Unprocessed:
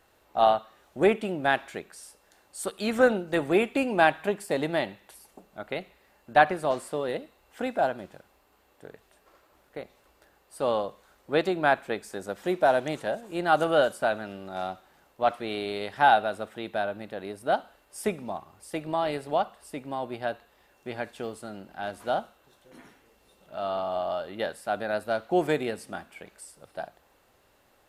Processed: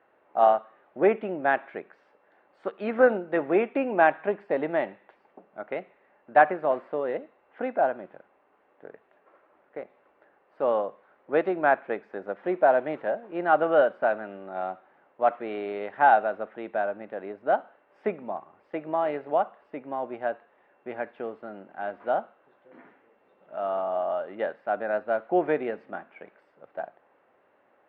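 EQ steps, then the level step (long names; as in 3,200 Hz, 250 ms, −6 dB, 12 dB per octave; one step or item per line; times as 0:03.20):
high-pass filter 230 Hz 12 dB per octave
low-pass filter 2,200 Hz 24 dB per octave
parametric band 580 Hz +2.5 dB
0.0 dB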